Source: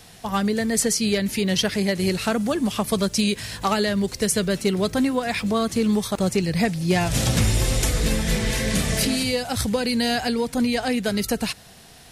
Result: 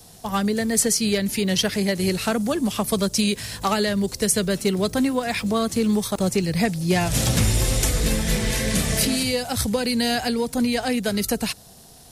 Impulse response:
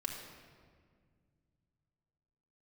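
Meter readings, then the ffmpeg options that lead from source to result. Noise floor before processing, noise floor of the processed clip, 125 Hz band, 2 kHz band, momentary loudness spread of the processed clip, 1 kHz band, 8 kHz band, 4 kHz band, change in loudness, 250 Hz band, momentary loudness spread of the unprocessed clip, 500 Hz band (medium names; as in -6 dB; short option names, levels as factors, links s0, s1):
-47 dBFS, -47 dBFS, 0.0 dB, -0.5 dB, 4 LU, 0.0 dB, +2.5 dB, +0.5 dB, +0.5 dB, 0.0 dB, 4 LU, 0.0 dB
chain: -filter_complex "[0:a]highshelf=f=9300:g=6,acrossover=split=310|1200|3600[s0][s1][s2][s3];[s2]aeval=exprs='sgn(val(0))*max(abs(val(0))-0.00224,0)':c=same[s4];[s0][s1][s4][s3]amix=inputs=4:normalize=0"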